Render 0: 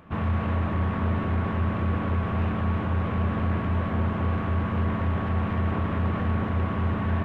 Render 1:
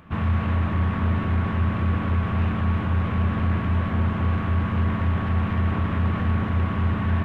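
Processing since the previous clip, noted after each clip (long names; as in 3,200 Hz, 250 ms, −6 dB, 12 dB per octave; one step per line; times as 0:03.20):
parametric band 530 Hz −6 dB 2 octaves
level +4 dB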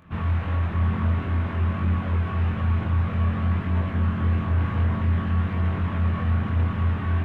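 multi-voice chorus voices 2, 0.53 Hz, delay 23 ms, depth 1.9 ms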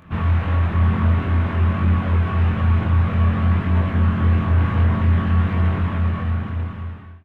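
fade-out on the ending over 1.63 s
level +5.5 dB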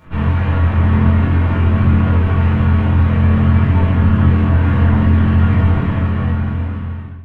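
rectangular room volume 300 cubic metres, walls furnished, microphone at 4.6 metres
level −3.5 dB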